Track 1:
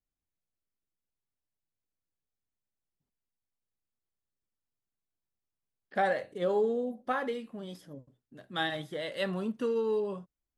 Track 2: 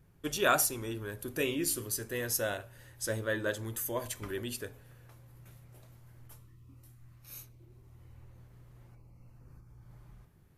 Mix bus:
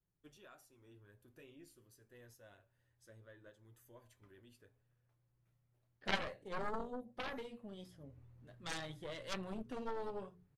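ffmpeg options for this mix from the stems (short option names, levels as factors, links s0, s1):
-filter_complex "[0:a]bandreject=f=60:t=h:w=6,bandreject=f=120:t=h:w=6,bandreject=f=180:t=h:w=6,bandreject=f=240:t=h:w=6,bandreject=f=300:t=h:w=6,bandreject=f=360:t=h:w=6,bandreject=f=420:t=h:w=6,bandreject=f=480:t=h:w=6,adelay=100,volume=1.33[s0];[1:a]alimiter=limit=0.0668:level=0:latency=1:release=268,highshelf=f=6100:g=-10,afade=t=in:st=7.76:d=0.31:silence=0.237137[s1];[s0][s1]amix=inputs=2:normalize=0,adynamicequalizer=threshold=0.00126:dfrequency=120:dqfactor=2.4:tfrequency=120:tqfactor=2.4:attack=5:release=100:ratio=0.375:range=3:mode=boostabove:tftype=bell,flanger=delay=5.3:depth=6.8:regen=-48:speed=0.56:shape=triangular,aeval=exprs='0.119*(cos(1*acos(clip(val(0)/0.119,-1,1)))-cos(1*PI/2))+0.0596*(cos(3*acos(clip(val(0)/0.119,-1,1)))-cos(3*PI/2))+0.0168*(cos(4*acos(clip(val(0)/0.119,-1,1)))-cos(4*PI/2))+0.00266*(cos(5*acos(clip(val(0)/0.119,-1,1)))-cos(5*PI/2))+0.00237*(cos(6*acos(clip(val(0)/0.119,-1,1)))-cos(6*PI/2))':c=same"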